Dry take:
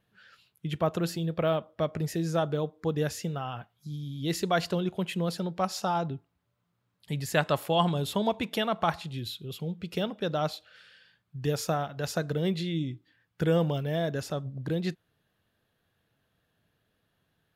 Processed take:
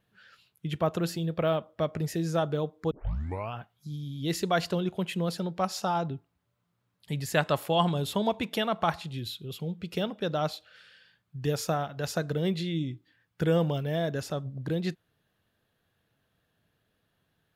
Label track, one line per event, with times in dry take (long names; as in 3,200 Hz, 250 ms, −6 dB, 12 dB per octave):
2.910000	2.910000	tape start 0.64 s